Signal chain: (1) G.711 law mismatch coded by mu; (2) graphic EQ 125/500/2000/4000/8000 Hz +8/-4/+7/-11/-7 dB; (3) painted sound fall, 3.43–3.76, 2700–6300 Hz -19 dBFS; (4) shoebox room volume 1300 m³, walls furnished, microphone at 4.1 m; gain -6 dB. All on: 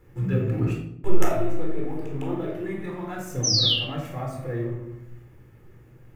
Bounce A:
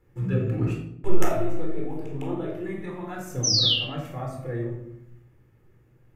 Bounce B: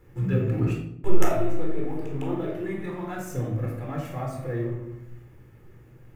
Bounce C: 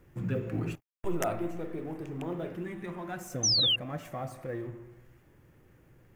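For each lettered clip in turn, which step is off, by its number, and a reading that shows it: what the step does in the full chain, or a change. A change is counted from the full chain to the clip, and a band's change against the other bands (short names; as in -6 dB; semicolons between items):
1, distortion -21 dB; 3, 4 kHz band -26.0 dB; 4, echo-to-direct 0.5 dB to none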